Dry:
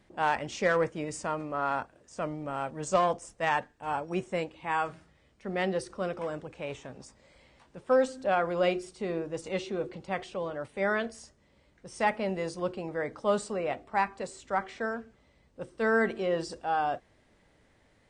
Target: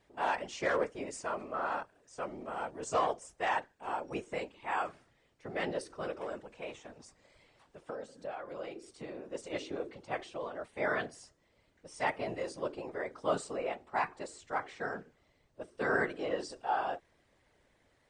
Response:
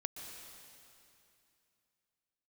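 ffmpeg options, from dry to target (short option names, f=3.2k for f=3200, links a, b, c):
-filter_complex "[0:a]equalizer=f=140:w=1.4:g=-11.5,asettb=1/sr,asplit=3[a][b][c];[a]atrim=end=6.694[d];[b]atrim=start=6.69:end=9.35,asetpts=PTS-STARTPTS,afade=t=in:d=0.004:c=qsin,afade=t=out:st=2.656:d=0.004:c=qsin,acompressor=threshold=-36dB:ratio=6[e];[c]atrim=start=9.346[f];[d][e]acrossfade=d=0.004:c1=hsin:c2=qsin[g];[g][f]acrossfade=d=0.004:c1=qsin:c2=hsin,afftfilt=real='hypot(re,im)*cos(2*PI*random(0))':imag='hypot(re,im)*sin(2*PI*random(1))':win_size=512:overlap=0.75,volume=2dB"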